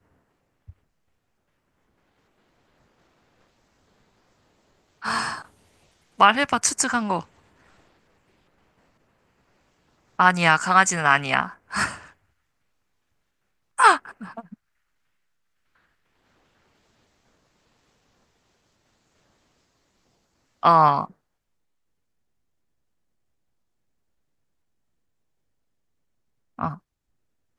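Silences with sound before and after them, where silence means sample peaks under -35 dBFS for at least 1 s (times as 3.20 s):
0.70–5.02 s
7.23–10.19 s
12.02–13.78 s
14.54–20.63 s
21.05–26.59 s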